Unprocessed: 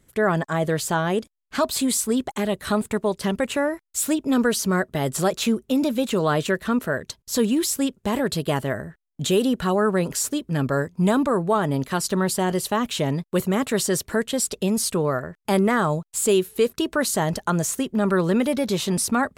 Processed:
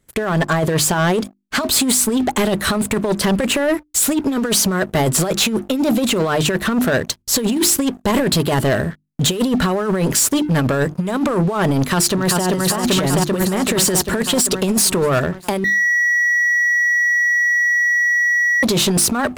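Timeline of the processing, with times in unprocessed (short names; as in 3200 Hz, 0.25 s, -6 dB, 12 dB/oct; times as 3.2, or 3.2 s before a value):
11.78–12.45 echo throw 0.39 s, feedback 65%, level -0.5 dB
15.64–18.63 bleep 1930 Hz -18.5 dBFS
whole clip: notches 50/100/150/200/250/300/350 Hz; negative-ratio compressor -24 dBFS, ratio -0.5; sample leveller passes 3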